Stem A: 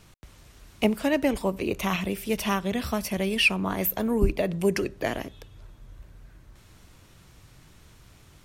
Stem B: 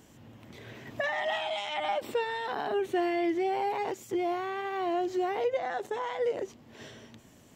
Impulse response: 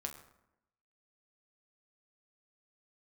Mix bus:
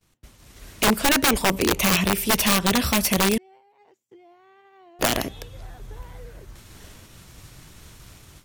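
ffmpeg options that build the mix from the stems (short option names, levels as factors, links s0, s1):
-filter_complex "[0:a]dynaudnorm=f=310:g=3:m=2,volume=1.19,asplit=3[s0][s1][s2];[s0]atrim=end=3.38,asetpts=PTS-STARTPTS,afade=t=out:st=3.376:d=0.004:c=hsin[s3];[s1]atrim=start=3.38:end=4.99,asetpts=PTS-STARTPTS,volume=0[s4];[s2]atrim=start=4.99,asetpts=PTS-STARTPTS,afade=t=in:d=0.004:c=hsin[s5];[s3][s4][s5]concat=n=3:v=0:a=1,asplit=2[s6][s7];[1:a]bass=f=250:g=-2,treble=f=4000:g=-3,acompressor=threshold=0.0112:ratio=12,volume=0.531[s8];[s7]apad=whole_len=333057[s9];[s8][s9]sidechaincompress=threshold=0.0891:ratio=8:attack=16:release=1180[s10];[s6][s10]amix=inputs=2:normalize=0,agate=range=0.0224:threshold=0.00794:ratio=3:detection=peak,highshelf=f=4400:g=5.5,aeval=exprs='(mod(3.98*val(0)+1,2)-1)/3.98':c=same"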